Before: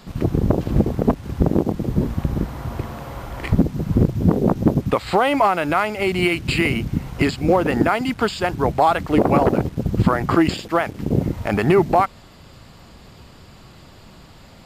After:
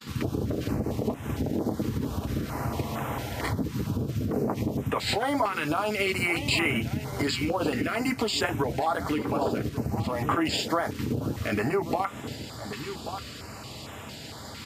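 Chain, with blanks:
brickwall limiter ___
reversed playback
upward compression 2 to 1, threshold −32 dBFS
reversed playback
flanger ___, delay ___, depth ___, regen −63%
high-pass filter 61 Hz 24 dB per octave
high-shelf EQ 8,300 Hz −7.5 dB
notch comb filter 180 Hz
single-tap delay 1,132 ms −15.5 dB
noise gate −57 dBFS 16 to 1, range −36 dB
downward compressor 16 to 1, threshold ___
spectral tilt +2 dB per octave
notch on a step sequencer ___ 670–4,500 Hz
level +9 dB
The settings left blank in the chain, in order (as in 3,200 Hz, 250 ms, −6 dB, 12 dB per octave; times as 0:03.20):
−12.5 dBFS, 0.71 Hz, 8.5 ms, 2.3 ms, −28 dBFS, 4.4 Hz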